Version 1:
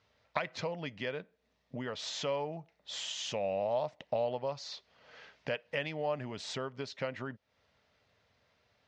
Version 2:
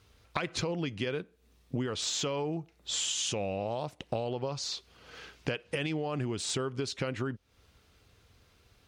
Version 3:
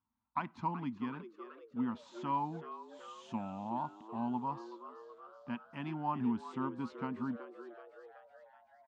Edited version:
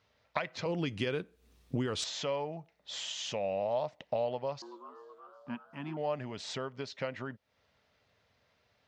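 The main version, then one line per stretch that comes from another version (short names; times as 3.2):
1
0.66–2.04 from 2
4.62–5.97 from 3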